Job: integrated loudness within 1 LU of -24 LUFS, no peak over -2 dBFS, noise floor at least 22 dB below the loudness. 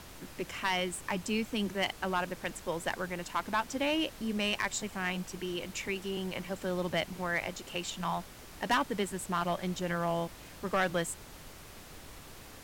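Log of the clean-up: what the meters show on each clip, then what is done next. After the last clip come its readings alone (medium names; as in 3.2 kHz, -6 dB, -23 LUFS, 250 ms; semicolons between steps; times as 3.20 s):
clipped samples 0.4%; clipping level -22.0 dBFS; noise floor -50 dBFS; noise floor target -56 dBFS; loudness -34.0 LUFS; peak level -22.0 dBFS; loudness target -24.0 LUFS
-> clip repair -22 dBFS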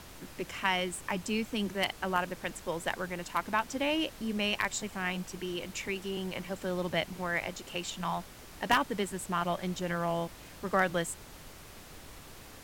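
clipped samples 0.0%; noise floor -50 dBFS; noise floor target -55 dBFS
-> noise print and reduce 6 dB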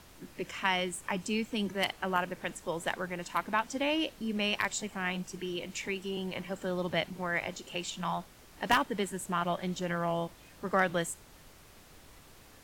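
noise floor -56 dBFS; loudness -33.0 LUFS; peak level -13.0 dBFS; loudness target -24.0 LUFS
-> trim +9 dB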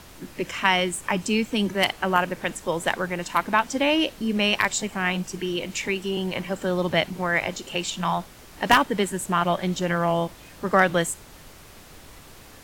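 loudness -24.0 LUFS; peak level -4.0 dBFS; noise floor -47 dBFS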